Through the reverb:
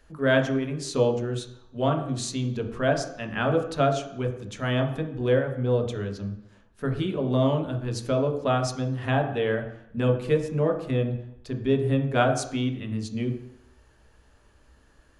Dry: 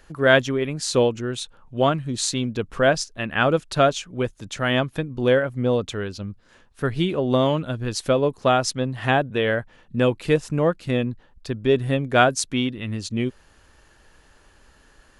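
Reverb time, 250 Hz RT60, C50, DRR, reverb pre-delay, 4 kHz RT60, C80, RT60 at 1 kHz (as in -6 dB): 0.70 s, 0.70 s, 8.0 dB, 2.0 dB, 3 ms, 0.70 s, 11.0 dB, 0.75 s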